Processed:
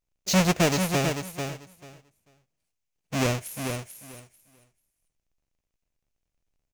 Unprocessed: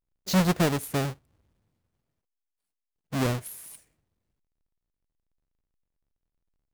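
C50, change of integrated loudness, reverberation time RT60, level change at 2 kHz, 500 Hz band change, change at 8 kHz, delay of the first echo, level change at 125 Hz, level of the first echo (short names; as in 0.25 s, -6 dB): none, +1.0 dB, none, +5.0 dB, +3.5 dB, +6.5 dB, 0.441 s, +1.0 dB, -6.5 dB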